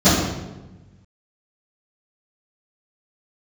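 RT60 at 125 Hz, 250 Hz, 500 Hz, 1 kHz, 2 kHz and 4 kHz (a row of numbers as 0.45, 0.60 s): 1.8, 1.5, 1.2, 1.0, 0.90, 0.75 s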